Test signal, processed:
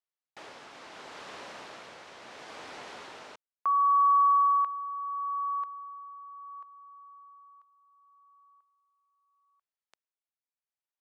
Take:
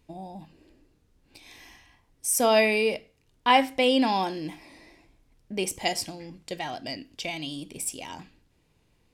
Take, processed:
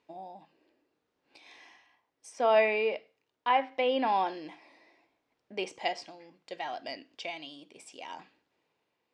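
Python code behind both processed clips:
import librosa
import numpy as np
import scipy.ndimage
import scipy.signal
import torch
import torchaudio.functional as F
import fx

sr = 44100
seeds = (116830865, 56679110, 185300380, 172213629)

y = fx.env_lowpass_down(x, sr, base_hz=2700.0, full_db=-19.5)
y = fx.bandpass_edges(y, sr, low_hz=620.0, high_hz=5900.0)
y = fx.tilt_eq(y, sr, slope=-2.5)
y = y * (1.0 - 0.44 / 2.0 + 0.44 / 2.0 * np.cos(2.0 * np.pi * 0.72 * (np.arange(len(y)) / sr)))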